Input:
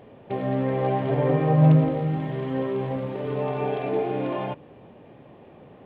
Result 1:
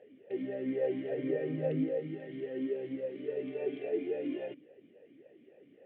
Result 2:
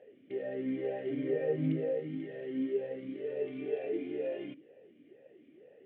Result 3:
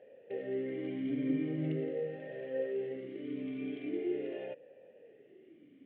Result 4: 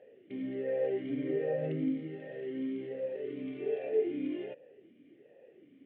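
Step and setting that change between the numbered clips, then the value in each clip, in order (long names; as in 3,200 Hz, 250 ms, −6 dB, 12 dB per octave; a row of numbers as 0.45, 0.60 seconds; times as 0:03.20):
formant filter swept between two vowels, speed: 3.6, 2.1, 0.42, 1.3 Hertz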